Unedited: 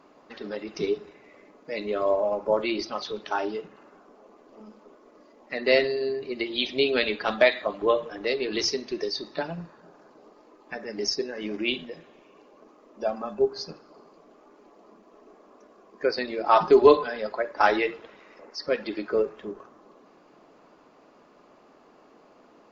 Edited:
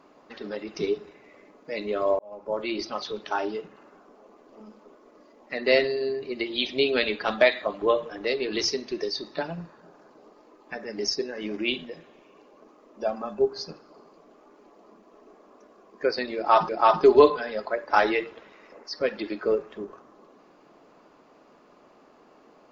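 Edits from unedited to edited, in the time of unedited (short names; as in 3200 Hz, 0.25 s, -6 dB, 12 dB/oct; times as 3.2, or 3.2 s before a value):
2.19–2.86 fade in
16.36–16.69 loop, 2 plays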